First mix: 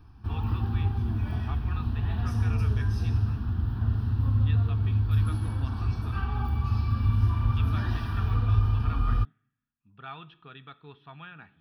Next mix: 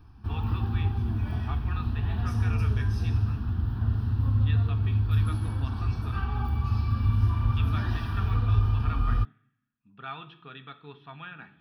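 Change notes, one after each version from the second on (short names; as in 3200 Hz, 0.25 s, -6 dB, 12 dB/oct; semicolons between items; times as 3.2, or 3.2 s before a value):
speech: send +7.5 dB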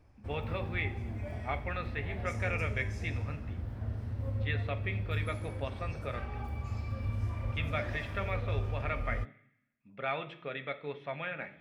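background -11.0 dB; master: remove fixed phaser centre 2100 Hz, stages 6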